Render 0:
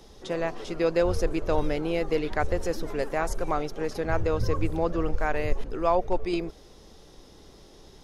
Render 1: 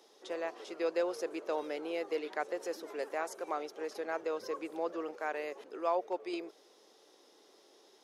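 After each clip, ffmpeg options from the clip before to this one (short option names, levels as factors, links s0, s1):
-af "highpass=f=330:w=0.5412,highpass=f=330:w=1.3066,volume=0.398"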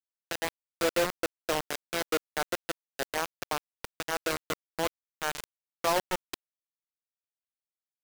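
-af "acrusher=bits=4:mix=0:aa=0.000001,volume=1.5"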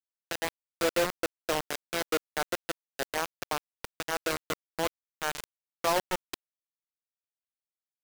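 -af anull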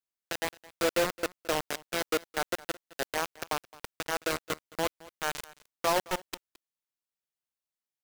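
-af "aecho=1:1:217:0.0891"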